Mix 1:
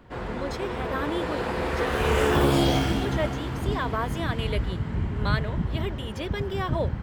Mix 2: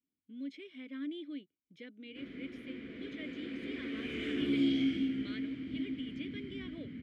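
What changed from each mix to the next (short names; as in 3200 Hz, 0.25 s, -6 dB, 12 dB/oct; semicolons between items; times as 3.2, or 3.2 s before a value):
background: entry +2.05 s; master: add vowel filter i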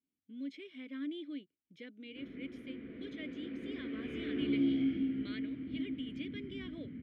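background: add tape spacing loss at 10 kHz 33 dB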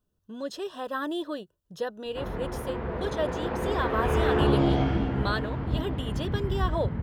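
speech: add Butterworth band-stop 2200 Hz, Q 2.9; master: remove vowel filter i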